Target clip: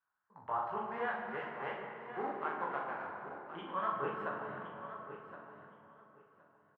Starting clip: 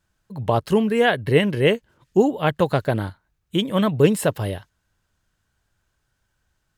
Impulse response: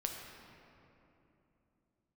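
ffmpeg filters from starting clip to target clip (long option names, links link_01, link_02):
-filter_complex "[0:a]aeval=exprs='if(lt(val(0),0),0.708*val(0),val(0))':channel_layout=same,lowshelf=frequency=740:width_type=q:width=1.5:gain=-7.5,alimiter=limit=-13dB:level=0:latency=1:release=448,asettb=1/sr,asplit=3[link_01][link_02][link_03];[link_01]atrim=end=0.914[link_04];[link_02]atrim=start=0.91:end=3.05,asetpts=PTS-STARTPTS,afade=type=in:duration=0.004:curve=qsin,afade=type=out:start_time=2.136:duration=0.004:curve=qsin,aeval=exprs='val(0)*gte(abs(val(0)),0.0376)':channel_layout=same[link_05];[link_03]atrim=start=3.046[link_06];[link_04][link_05]acrossfade=duration=0.004:curve1=hsin:curve2=qsin[link_07];[link_07][link_06]acrossfade=duration=0.004:curve1=qsin:curve2=hsin,lowpass=frequency=1300:width=0.5412,lowpass=frequency=1300:width=1.3066,aderivative,aecho=1:1:1068|2136:0.251|0.0452,flanger=delay=18:depth=5.5:speed=2.8,asplit=2[link_08][link_09];[link_09]adelay=44,volume=-5.5dB[link_10];[link_08][link_10]amix=inputs=2:normalize=0[link_11];[1:a]atrim=start_sample=2205,asetrate=42336,aresample=44100[link_12];[link_11][link_12]afir=irnorm=-1:irlink=0,volume=13.5dB"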